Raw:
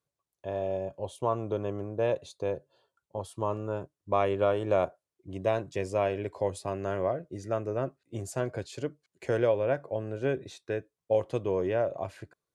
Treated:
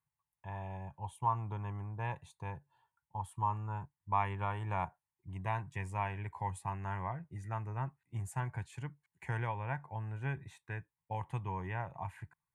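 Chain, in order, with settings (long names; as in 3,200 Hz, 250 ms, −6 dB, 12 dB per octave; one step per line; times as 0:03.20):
drawn EQ curve 160 Hz 0 dB, 250 Hz −14 dB, 590 Hz −24 dB, 880 Hz +6 dB, 1,300 Hz −8 dB, 1,900 Hz +1 dB, 4,900 Hz −20 dB, 8,700 Hz −5 dB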